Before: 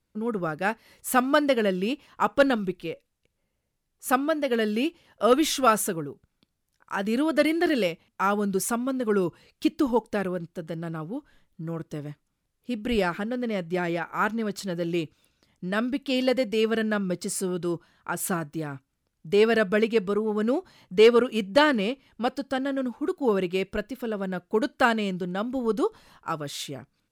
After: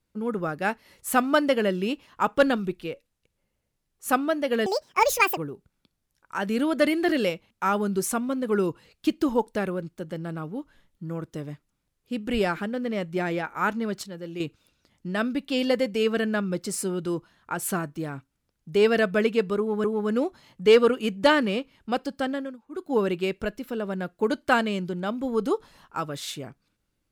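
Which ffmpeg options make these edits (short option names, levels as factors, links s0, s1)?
-filter_complex "[0:a]asplit=8[s0][s1][s2][s3][s4][s5][s6][s7];[s0]atrim=end=4.664[s8];[s1]atrim=start=4.66:end=5.95,asetpts=PTS-STARTPTS,asetrate=79821,aresample=44100,atrim=end_sample=31430,asetpts=PTS-STARTPTS[s9];[s2]atrim=start=5.946:end=14.612[s10];[s3]atrim=start=14.608:end=14.982,asetpts=PTS-STARTPTS,volume=0.398[s11];[s4]atrim=start=14.978:end=20.422[s12];[s5]atrim=start=20.158:end=22.89,asetpts=PTS-STARTPTS,afade=t=out:st=2.472:d=0.26:silence=0.11885[s13];[s6]atrim=start=22.89:end=22.99,asetpts=PTS-STARTPTS,volume=0.119[s14];[s7]atrim=start=22.99,asetpts=PTS-STARTPTS,afade=t=in:d=0.26:silence=0.11885[s15];[s8][s9]acrossfade=d=0.004:c1=hsin:c2=hsin[s16];[s16][s10]acrossfade=d=0.004:c1=hsin:c2=hsin[s17];[s17][s11]acrossfade=d=0.004:c1=hsin:c2=hsin[s18];[s18][s12]acrossfade=d=0.004:c1=hsin:c2=hsin[s19];[s13][s14][s15]concat=n=3:v=0:a=1[s20];[s19][s20]acrossfade=d=0.004:c1=hsin:c2=hsin"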